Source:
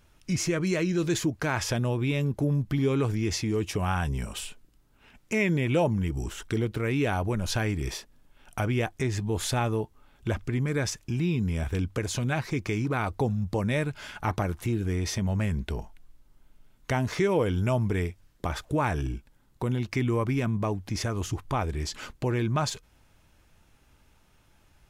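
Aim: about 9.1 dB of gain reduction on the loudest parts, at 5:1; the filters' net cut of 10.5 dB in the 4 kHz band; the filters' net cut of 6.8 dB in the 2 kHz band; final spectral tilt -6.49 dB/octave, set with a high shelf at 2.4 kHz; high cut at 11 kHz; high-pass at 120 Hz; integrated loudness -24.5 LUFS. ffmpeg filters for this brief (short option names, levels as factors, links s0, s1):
-af "highpass=120,lowpass=11000,equalizer=f=2000:t=o:g=-4,highshelf=f=2400:g=-6.5,equalizer=f=4000:t=o:g=-6.5,acompressor=threshold=0.0251:ratio=5,volume=4.47"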